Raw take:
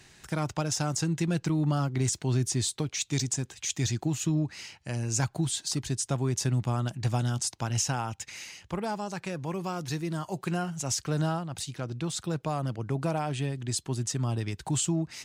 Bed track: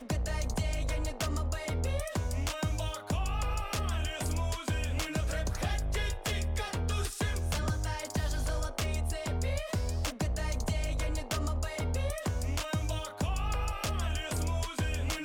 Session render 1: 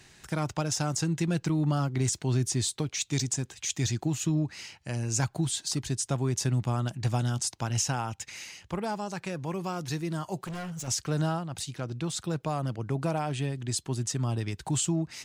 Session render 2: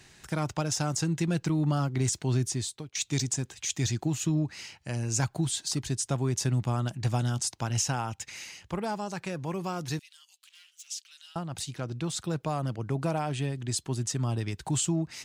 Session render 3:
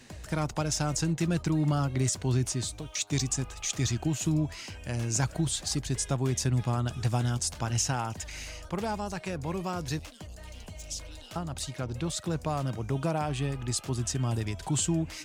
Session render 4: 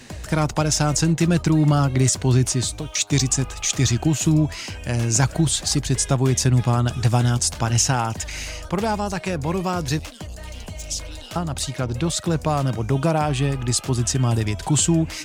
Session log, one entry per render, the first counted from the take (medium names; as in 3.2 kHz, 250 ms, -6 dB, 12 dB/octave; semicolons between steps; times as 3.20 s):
10.46–10.88 s: overload inside the chain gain 34 dB
2.37–2.95 s: fade out, to -17 dB; 9.99–11.36 s: ladder high-pass 2.5 kHz, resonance 45%
add bed track -12.5 dB
trim +9.5 dB